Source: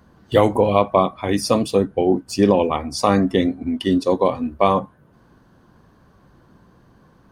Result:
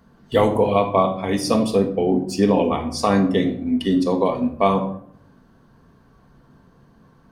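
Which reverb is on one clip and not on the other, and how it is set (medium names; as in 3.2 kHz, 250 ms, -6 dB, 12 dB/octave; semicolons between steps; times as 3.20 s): simulated room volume 970 m³, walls furnished, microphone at 1.6 m; trim -3 dB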